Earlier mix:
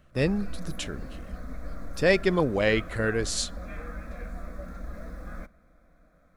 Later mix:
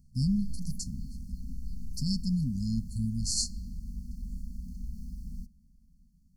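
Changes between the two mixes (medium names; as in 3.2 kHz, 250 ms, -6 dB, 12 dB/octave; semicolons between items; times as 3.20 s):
speech: send +8.5 dB; master: add brick-wall FIR band-stop 260–4200 Hz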